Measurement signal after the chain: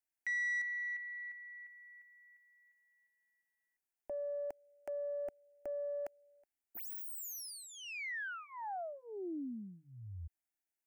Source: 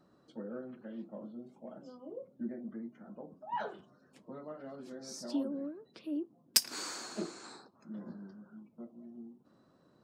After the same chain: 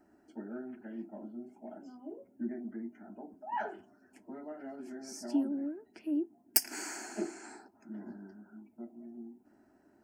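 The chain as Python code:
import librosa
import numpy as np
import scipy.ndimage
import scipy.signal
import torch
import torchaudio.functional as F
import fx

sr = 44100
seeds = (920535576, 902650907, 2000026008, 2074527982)

y = fx.self_delay(x, sr, depth_ms=0.07)
y = fx.fixed_phaser(y, sr, hz=760.0, stages=8)
y = y * 10.0 ** (4.5 / 20.0)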